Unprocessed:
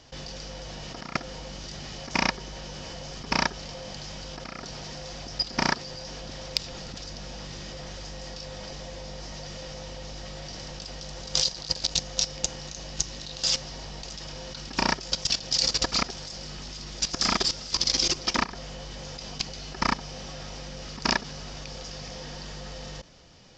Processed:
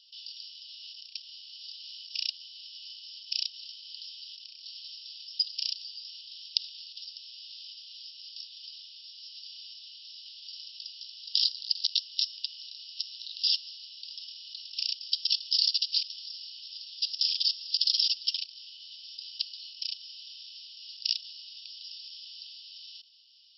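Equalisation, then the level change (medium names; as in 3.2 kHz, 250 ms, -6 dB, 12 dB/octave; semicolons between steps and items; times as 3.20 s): steep high-pass 2.8 kHz 96 dB/octave; brick-wall FIR low-pass 5.6 kHz; 0.0 dB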